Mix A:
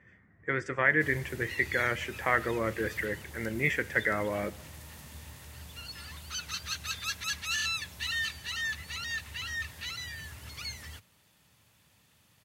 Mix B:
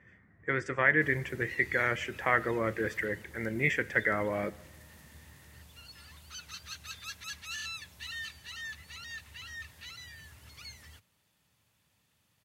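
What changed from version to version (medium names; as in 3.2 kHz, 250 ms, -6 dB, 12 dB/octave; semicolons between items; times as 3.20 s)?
background -8.0 dB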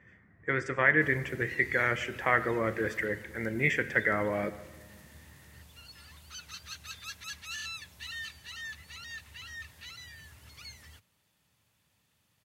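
speech: send +8.5 dB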